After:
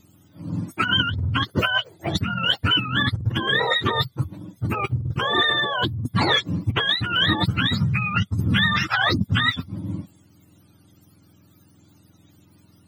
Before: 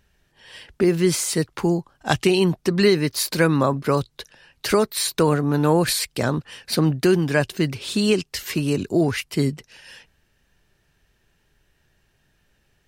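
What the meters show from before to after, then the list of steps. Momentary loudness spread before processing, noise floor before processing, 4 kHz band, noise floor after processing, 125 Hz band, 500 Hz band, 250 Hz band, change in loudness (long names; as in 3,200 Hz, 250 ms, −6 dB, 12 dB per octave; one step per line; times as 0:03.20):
7 LU, −67 dBFS, +7.5 dB, −56 dBFS, +0.5 dB, −10.5 dB, −6.0 dB, −0.5 dB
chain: frequency axis turned over on the octave scale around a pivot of 720 Hz
compressor whose output falls as the input rises −27 dBFS, ratio −1
level +5 dB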